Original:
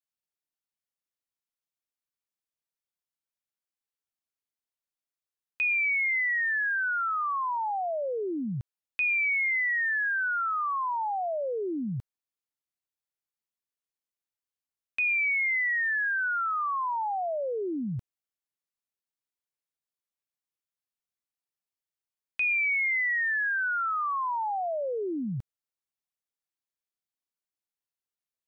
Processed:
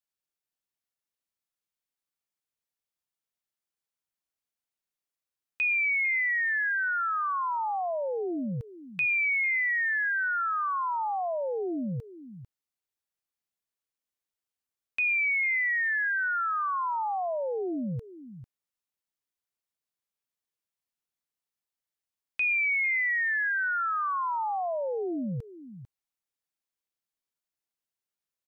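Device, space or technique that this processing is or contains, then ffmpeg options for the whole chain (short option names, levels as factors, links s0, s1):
ducked delay: -filter_complex "[0:a]asplit=3[s0][s1][s2];[s1]adelay=447,volume=0.422[s3];[s2]apad=whole_len=1275537[s4];[s3][s4]sidechaincompress=threshold=0.01:ratio=8:attack=16:release=1260[s5];[s0][s5]amix=inputs=2:normalize=0"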